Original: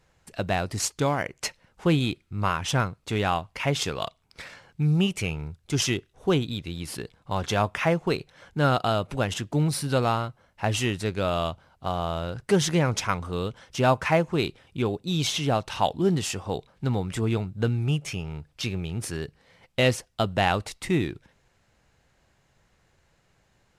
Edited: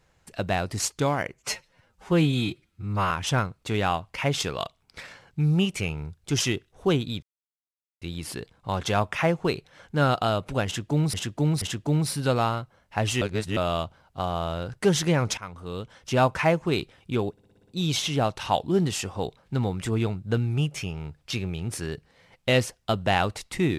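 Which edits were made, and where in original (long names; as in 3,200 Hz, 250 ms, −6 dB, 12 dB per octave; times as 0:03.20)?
0:01.35–0:02.52: time-stretch 1.5×
0:06.64: splice in silence 0.79 s
0:09.28–0:09.76: repeat, 3 plays
0:10.88–0:11.23: reverse
0:13.04–0:13.81: fade in, from −15.5 dB
0:14.98: stutter 0.06 s, 7 plays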